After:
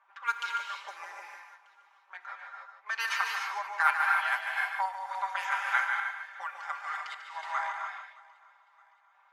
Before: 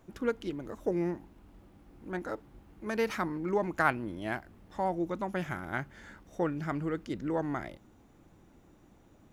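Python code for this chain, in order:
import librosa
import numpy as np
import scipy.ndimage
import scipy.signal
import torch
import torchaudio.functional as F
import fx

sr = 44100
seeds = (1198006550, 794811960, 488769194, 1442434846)

y = fx.rider(x, sr, range_db=4, speed_s=0.5)
y = fx.env_lowpass(y, sr, base_hz=1400.0, full_db=-26.5)
y = scipy.signal.sosfilt(scipy.signal.butter(6, 910.0, 'highpass', fs=sr, output='sos'), y)
y = y + 0.93 * np.pad(y, (int(5.1 * sr / 1000.0), 0))[:len(y)]
y = y + 10.0 ** (-7.0 / 20.0) * np.pad(y, (int(147 * sr / 1000.0), 0))[:len(y)]
y = fx.rev_gated(y, sr, seeds[0], gate_ms=330, shape='rising', drr_db=1.5)
y = fx.tremolo_random(y, sr, seeds[1], hz=3.5, depth_pct=55)
y = fx.echo_feedback(y, sr, ms=619, feedback_pct=47, wet_db=-23.5)
y = y * librosa.db_to_amplitude(5.5)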